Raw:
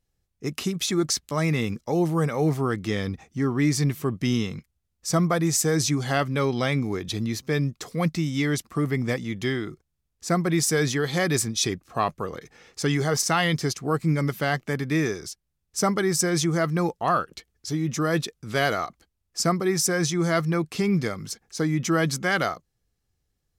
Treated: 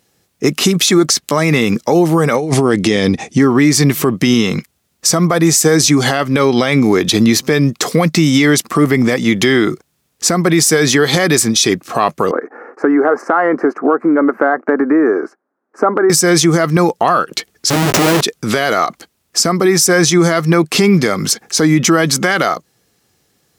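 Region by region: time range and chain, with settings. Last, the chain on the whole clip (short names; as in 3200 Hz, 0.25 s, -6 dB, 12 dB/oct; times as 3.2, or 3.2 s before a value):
2.35–3.39 steep low-pass 11000 Hz 48 dB/oct + bell 1300 Hz -8 dB + negative-ratio compressor -27 dBFS, ratio -0.5
12.31–16.1 elliptic band-pass 260–1500 Hz + compressor 3:1, threshold -31 dBFS
17.7–18.21 Schmitt trigger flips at -28 dBFS + doubler 18 ms -9.5 dB
whole clip: HPF 200 Hz 12 dB/oct; compressor 6:1, threshold -29 dBFS; maximiser +24 dB; gain -1 dB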